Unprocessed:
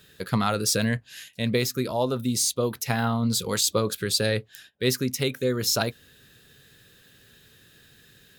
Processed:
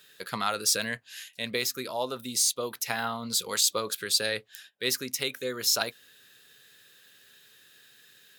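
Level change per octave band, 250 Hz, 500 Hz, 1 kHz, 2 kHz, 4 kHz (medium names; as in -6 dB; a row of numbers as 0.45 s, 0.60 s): -12.5 dB, -7.0 dB, -3.0 dB, -1.0 dB, 0.0 dB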